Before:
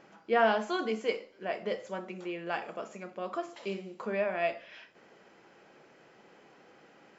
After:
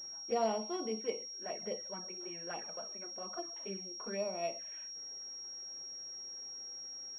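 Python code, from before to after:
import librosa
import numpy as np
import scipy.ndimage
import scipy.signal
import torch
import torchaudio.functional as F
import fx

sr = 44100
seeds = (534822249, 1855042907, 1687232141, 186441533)

y = fx.env_flanger(x, sr, rest_ms=9.2, full_db=-29.0)
y = fx.pwm(y, sr, carrier_hz=5600.0)
y = y * librosa.db_to_amplitude(-5.0)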